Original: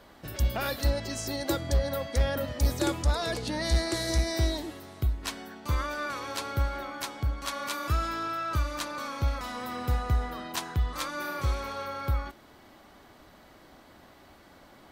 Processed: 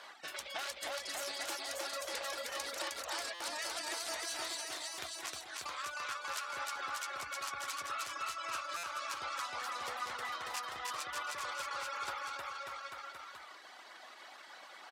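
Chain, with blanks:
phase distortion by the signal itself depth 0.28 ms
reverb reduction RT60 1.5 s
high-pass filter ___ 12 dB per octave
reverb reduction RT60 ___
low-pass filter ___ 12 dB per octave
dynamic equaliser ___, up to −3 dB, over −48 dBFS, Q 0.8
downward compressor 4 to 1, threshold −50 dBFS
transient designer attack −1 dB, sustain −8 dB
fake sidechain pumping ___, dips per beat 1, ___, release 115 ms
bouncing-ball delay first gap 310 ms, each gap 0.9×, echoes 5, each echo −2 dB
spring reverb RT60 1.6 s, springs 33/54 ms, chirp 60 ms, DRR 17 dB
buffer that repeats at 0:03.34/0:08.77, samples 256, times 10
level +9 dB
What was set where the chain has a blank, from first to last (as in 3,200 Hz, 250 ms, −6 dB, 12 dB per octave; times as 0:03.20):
1,000 Hz, 1.9 s, 8,500 Hz, 2,100 Hz, 137 BPM, −3 dB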